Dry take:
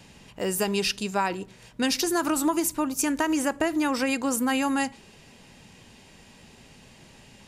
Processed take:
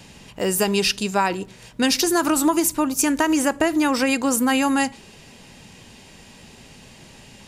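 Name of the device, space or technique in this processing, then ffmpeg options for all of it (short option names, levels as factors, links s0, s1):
exciter from parts: -filter_complex "[0:a]asplit=2[s0][s1];[s1]highpass=2300,asoftclip=type=tanh:threshold=0.0224,volume=0.211[s2];[s0][s2]amix=inputs=2:normalize=0,volume=1.88"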